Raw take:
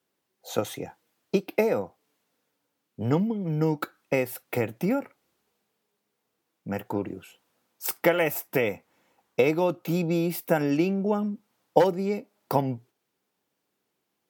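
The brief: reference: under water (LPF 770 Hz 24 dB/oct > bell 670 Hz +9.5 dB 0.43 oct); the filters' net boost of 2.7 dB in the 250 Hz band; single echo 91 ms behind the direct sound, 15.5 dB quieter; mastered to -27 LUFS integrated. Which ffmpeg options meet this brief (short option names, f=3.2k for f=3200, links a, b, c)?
-af "lowpass=f=770:w=0.5412,lowpass=f=770:w=1.3066,equalizer=f=250:t=o:g=3.5,equalizer=f=670:t=o:w=0.43:g=9.5,aecho=1:1:91:0.168,volume=-2.5dB"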